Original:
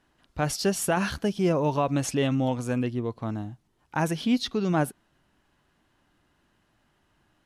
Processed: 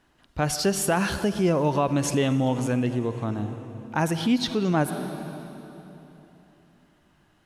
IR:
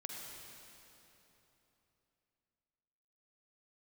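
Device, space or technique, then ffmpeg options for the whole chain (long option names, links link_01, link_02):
ducked reverb: -filter_complex "[0:a]asplit=3[link_01][link_02][link_03];[1:a]atrim=start_sample=2205[link_04];[link_02][link_04]afir=irnorm=-1:irlink=0[link_05];[link_03]apad=whole_len=328828[link_06];[link_05][link_06]sidechaincompress=threshold=-30dB:ratio=4:attack=12:release=109,volume=-1dB[link_07];[link_01][link_07]amix=inputs=2:normalize=0"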